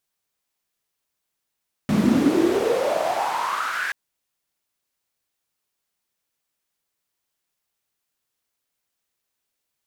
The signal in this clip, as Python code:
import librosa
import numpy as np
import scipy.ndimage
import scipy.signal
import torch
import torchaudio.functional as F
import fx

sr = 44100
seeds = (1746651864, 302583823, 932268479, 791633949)

y = fx.riser_noise(sr, seeds[0], length_s=2.03, colour='white', kind='bandpass', start_hz=190.0, end_hz=1700.0, q=6.4, swell_db=-19.0, law='exponential')